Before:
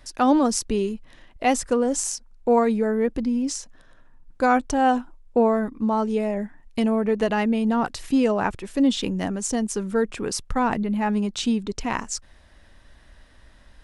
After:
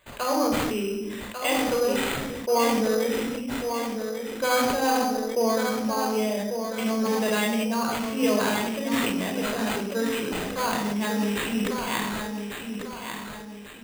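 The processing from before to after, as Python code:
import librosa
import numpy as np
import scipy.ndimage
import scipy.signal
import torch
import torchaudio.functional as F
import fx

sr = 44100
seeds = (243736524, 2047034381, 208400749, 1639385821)

y = fx.highpass(x, sr, hz=400.0, slope=6)
y = fx.peak_eq(y, sr, hz=2400.0, db=8.0, octaves=0.51)
y = fx.echo_feedback(y, sr, ms=1145, feedback_pct=39, wet_db=-7)
y = fx.room_shoebox(y, sr, seeds[0], volume_m3=2000.0, walls='furnished', distance_m=5.3)
y = np.repeat(y[::8], 8)[:len(y)]
y = fx.sustainer(y, sr, db_per_s=23.0)
y = y * 10.0 ** (-7.5 / 20.0)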